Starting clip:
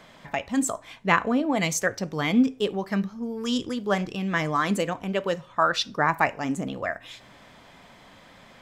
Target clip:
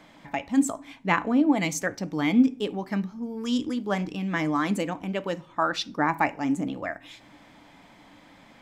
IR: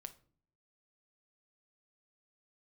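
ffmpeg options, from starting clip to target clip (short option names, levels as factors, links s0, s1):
-filter_complex "[0:a]asplit=2[s0][s1];[s1]asplit=3[s2][s3][s4];[s2]bandpass=f=300:t=q:w=8,volume=1[s5];[s3]bandpass=f=870:t=q:w=8,volume=0.501[s6];[s4]bandpass=f=2240:t=q:w=8,volume=0.355[s7];[s5][s6][s7]amix=inputs=3:normalize=0[s8];[1:a]atrim=start_sample=2205,lowshelf=f=440:g=8.5[s9];[s8][s9]afir=irnorm=-1:irlink=0,volume=2.82[s10];[s0][s10]amix=inputs=2:normalize=0,volume=0.631"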